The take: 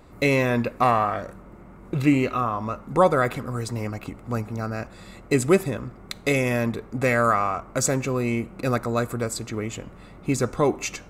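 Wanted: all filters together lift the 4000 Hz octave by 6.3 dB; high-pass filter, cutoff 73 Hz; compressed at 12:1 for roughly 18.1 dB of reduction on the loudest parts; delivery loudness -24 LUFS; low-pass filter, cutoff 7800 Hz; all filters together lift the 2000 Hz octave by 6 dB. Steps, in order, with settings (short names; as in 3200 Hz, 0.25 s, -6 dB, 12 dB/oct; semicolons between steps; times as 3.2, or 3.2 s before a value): HPF 73 Hz; LPF 7800 Hz; bell 2000 Hz +5.5 dB; bell 4000 Hz +6.5 dB; compressor 12:1, threshold -31 dBFS; gain +12 dB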